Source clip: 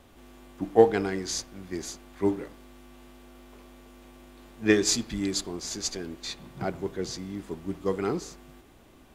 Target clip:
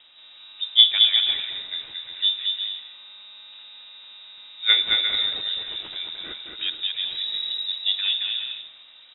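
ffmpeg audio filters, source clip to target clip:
-filter_complex "[0:a]asplit=3[s0][s1][s2];[s0]afade=t=out:st=7.1:d=0.02[s3];[s1]asubboost=boost=11.5:cutoff=78,afade=t=in:st=7.1:d=0.02,afade=t=out:st=7.64:d=0.02[s4];[s2]afade=t=in:st=7.64:d=0.02[s5];[s3][s4][s5]amix=inputs=3:normalize=0,asplit=2[s6][s7];[s7]aecho=0:1:220|352|431.2|478.7|507.2:0.631|0.398|0.251|0.158|0.1[s8];[s6][s8]amix=inputs=2:normalize=0,lowpass=f=3300:t=q:w=0.5098,lowpass=f=3300:t=q:w=0.6013,lowpass=f=3300:t=q:w=0.9,lowpass=f=3300:t=q:w=2.563,afreqshift=-3900,volume=1.33"

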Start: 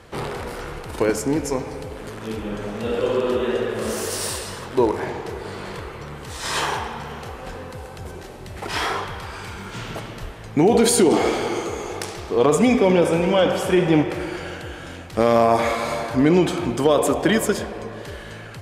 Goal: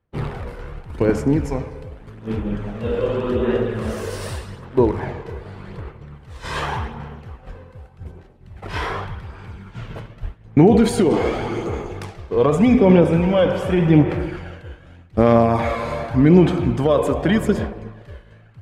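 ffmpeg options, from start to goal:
-af "agate=range=0.0224:threshold=0.0501:ratio=3:detection=peak,aphaser=in_gain=1:out_gain=1:delay=2:decay=0.33:speed=0.85:type=sinusoidal,bass=f=250:g=9,treble=f=4000:g=-11,volume=0.794"

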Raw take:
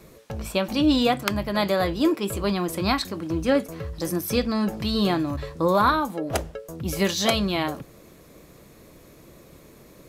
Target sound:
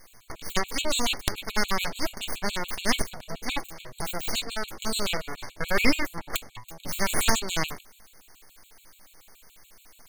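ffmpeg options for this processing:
-af "tiltshelf=f=630:g=-8,aeval=exprs='abs(val(0))':c=same,afftfilt=real='re*gt(sin(2*PI*7*pts/sr)*(1-2*mod(floor(b*sr/1024/2200),2)),0)':imag='im*gt(sin(2*PI*7*pts/sr)*(1-2*mod(floor(b*sr/1024/2200),2)),0)':win_size=1024:overlap=0.75"

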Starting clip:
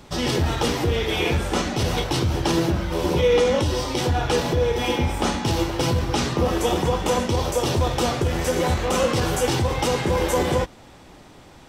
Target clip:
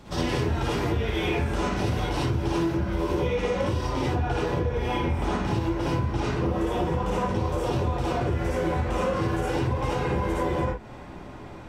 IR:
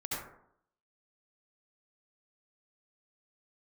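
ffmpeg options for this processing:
-filter_complex "[0:a]asetnsamples=n=441:p=0,asendcmd='3.81 highshelf g -11',highshelf=f=3100:g=-5.5[s0];[1:a]atrim=start_sample=2205,afade=t=out:st=0.21:d=0.01,atrim=end_sample=9702,asetrate=52920,aresample=44100[s1];[s0][s1]afir=irnorm=-1:irlink=0,acompressor=threshold=0.0447:ratio=6,volume=1.58"

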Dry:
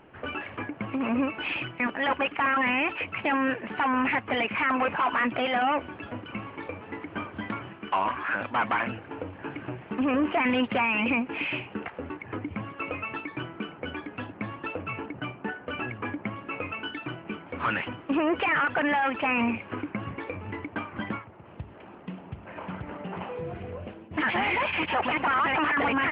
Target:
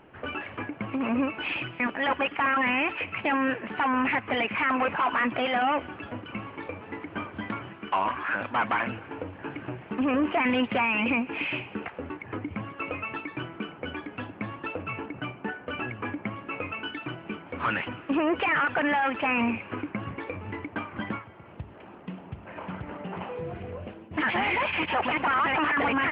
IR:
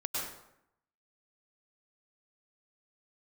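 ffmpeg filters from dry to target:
-filter_complex "[0:a]asplit=2[s0][s1];[s1]highpass=1500[s2];[1:a]atrim=start_sample=2205,adelay=147[s3];[s2][s3]afir=irnorm=-1:irlink=0,volume=0.0794[s4];[s0][s4]amix=inputs=2:normalize=0"

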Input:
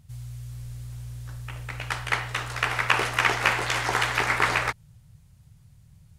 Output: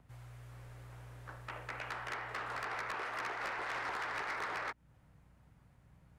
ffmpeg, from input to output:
-filter_complex "[0:a]acrossover=split=270 2100:gain=0.112 1 0.1[s0][s1][s2];[s0][s1][s2]amix=inputs=3:normalize=0,asplit=2[s3][s4];[s4]acompressor=threshold=0.01:ratio=6,volume=1.26[s5];[s3][s5]amix=inputs=2:normalize=0,aeval=exprs='val(0)+0.000708*(sin(2*PI*60*n/s)+sin(2*PI*2*60*n/s)/2+sin(2*PI*3*60*n/s)/3+sin(2*PI*4*60*n/s)/4+sin(2*PI*5*60*n/s)/5)':c=same,acrossover=split=470|980|3900[s6][s7][s8][s9];[s6]acompressor=threshold=0.00501:ratio=4[s10];[s7]acompressor=threshold=0.00794:ratio=4[s11];[s8]acompressor=threshold=0.0282:ratio=4[s12];[s9]acompressor=threshold=0.002:ratio=4[s13];[s10][s11][s12][s13]amix=inputs=4:normalize=0,asoftclip=type=tanh:threshold=0.0282,volume=0.708"

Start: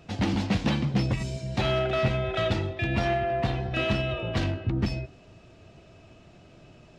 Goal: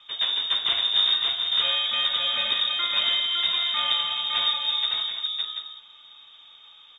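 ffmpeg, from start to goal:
-filter_complex "[0:a]asettb=1/sr,asplit=3[s0][s1][s2];[s0]atrim=end=0.604[s3];[s1]atrim=start=0.6:end=1.18,asetpts=PTS-STARTPTS,afade=t=in:d=0.004:c=qsin,afade=t=out:st=0.576:d=0.004:c=qsin,asplit=2[s4][s5];[s5]adelay=31,volume=0.596[s6];[s4][s6]amix=inputs=2:normalize=0,atrim=end_sample=25578[s7];[s2]atrim=start=1.176[s8];[s3][s7]acrossfade=d=0.004:c1=hsin:c2=qsin[s9];[s9][s8]acrossfade=d=0.004:c1=qsin:c2=hsin,asplit=2[s10][s11];[s11]aecho=0:1:340|351|561|735:0.237|0.168|0.668|0.335[s12];[s10][s12]amix=inputs=2:normalize=0,lowpass=f=3200:t=q:w=0.5098,lowpass=f=3200:t=q:w=0.6013,lowpass=f=3200:t=q:w=0.9,lowpass=f=3200:t=q:w=2.563,afreqshift=-3800" -ar 16000 -c:a pcm_mulaw

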